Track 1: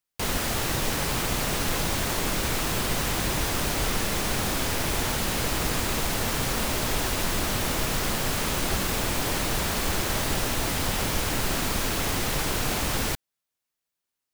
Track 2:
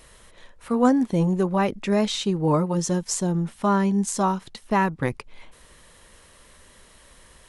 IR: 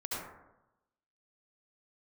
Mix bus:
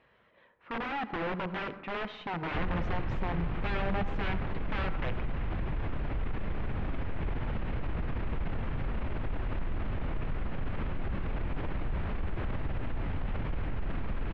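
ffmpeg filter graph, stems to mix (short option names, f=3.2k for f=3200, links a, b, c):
-filter_complex "[0:a]aemphasis=mode=reproduction:type=bsi,alimiter=limit=-22.5dB:level=0:latency=1:release=52,adelay=2350,volume=-3dB[a];[1:a]highpass=120,flanger=delay=1.2:depth=5.7:regen=76:speed=0.27:shape=sinusoidal,aeval=exprs='(mod(15*val(0)+1,2)-1)/15':c=same,volume=-6dB,asplit=2[b][c];[c]volume=-15dB[d];[2:a]atrim=start_sample=2205[e];[d][e]afir=irnorm=-1:irlink=0[f];[a][b][f]amix=inputs=3:normalize=0,lowpass=f=2.7k:w=0.5412,lowpass=f=2.7k:w=1.3066"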